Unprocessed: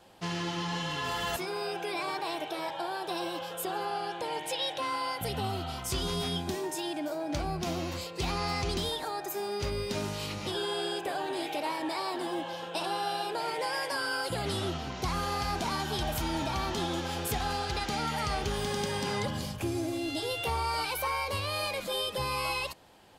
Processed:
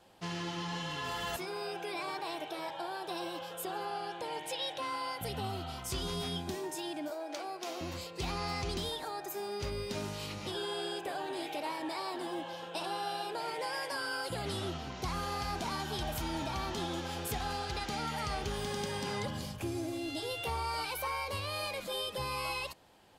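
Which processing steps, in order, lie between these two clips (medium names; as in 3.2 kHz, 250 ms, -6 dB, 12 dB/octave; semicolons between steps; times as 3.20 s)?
7.10–7.81 s: high-pass 360 Hz 24 dB/octave; trim -4.5 dB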